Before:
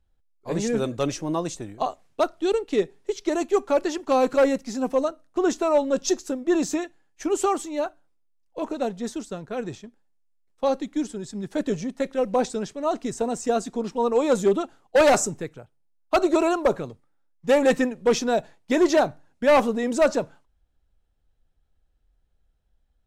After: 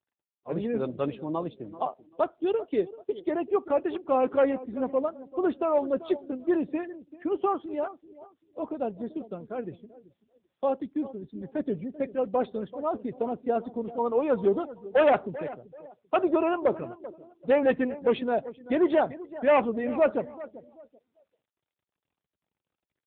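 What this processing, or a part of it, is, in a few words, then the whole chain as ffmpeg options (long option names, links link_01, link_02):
mobile call with aggressive noise cancelling: -af "highpass=frequency=150:poles=1,aecho=1:1:388|776|1164:0.158|0.0507|0.0162,afftdn=noise_reduction=19:noise_floor=-41,volume=-3dB" -ar 8000 -c:a libopencore_amrnb -b:a 7950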